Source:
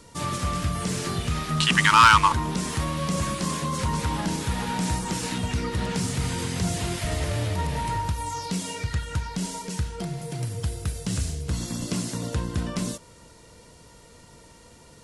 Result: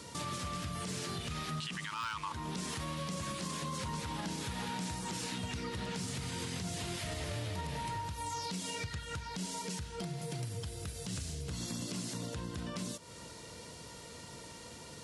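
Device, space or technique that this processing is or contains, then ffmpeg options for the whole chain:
broadcast voice chain: -af "highpass=79,deesser=0.35,acompressor=threshold=-39dB:ratio=4,equalizer=frequency=3900:width_type=o:width=1.6:gain=4,alimiter=level_in=6dB:limit=-24dB:level=0:latency=1:release=31,volume=-6dB,volume=1dB"

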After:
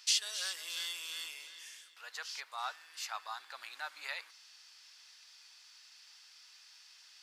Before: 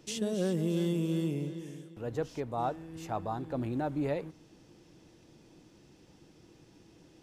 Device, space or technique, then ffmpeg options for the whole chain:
headphones lying on a table: -af "highpass=frequency=1300:width=0.5412,highpass=frequency=1300:width=1.3066,equalizer=frequency=4600:width_type=o:width=0.47:gain=9.5,volume=6.5dB"

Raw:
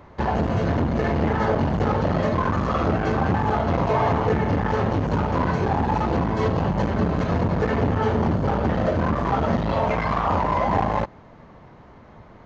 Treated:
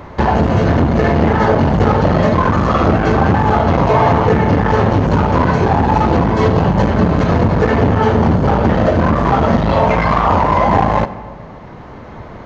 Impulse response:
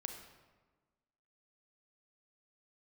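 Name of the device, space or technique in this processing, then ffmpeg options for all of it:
ducked reverb: -filter_complex "[0:a]asplit=3[link_01][link_02][link_03];[1:a]atrim=start_sample=2205[link_04];[link_02][link_04]afir=irnorm=-1:irlink=0[link_05];[link_03]apad=whole_len=549453[link_06];[link_05][link_06]sidechaincompress=threshold=-24dB:ratio=8:attack=5.7:release=1420,volume=7.5dB[link_07];[link_01][link_07]amix=inputs=2:normalize=0,volume=5dB"

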